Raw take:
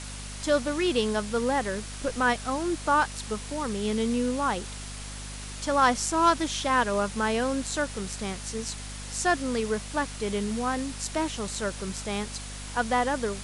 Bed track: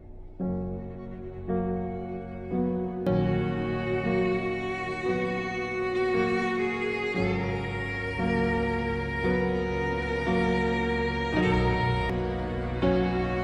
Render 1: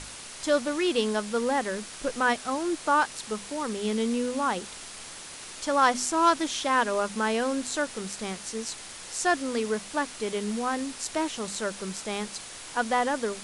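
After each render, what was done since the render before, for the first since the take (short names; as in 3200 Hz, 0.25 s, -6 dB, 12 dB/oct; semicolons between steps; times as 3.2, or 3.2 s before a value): notches 50/100/150/200/250 Hz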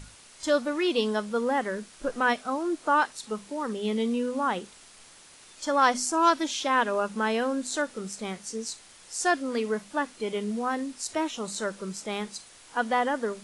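noise print and reduce 10 dB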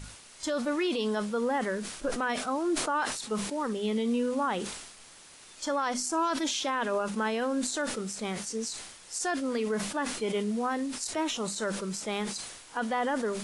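limiter -21 dBFS, peak gain reduction 11.5 dB; sustainer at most 55 dB/s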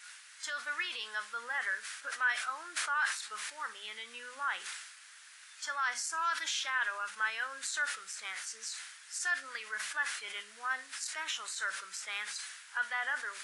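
resonant high-pass 1600 Hz, resonance Q 2.9; flange 0.4 Hz, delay 9.2 ms, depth 4.1 ms, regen +77%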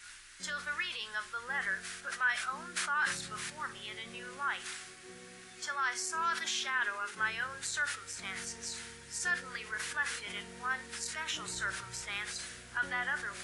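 add bed track -25.5 dB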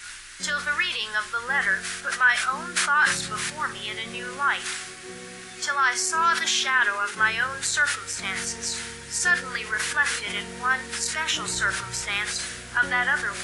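gain +11.5 dB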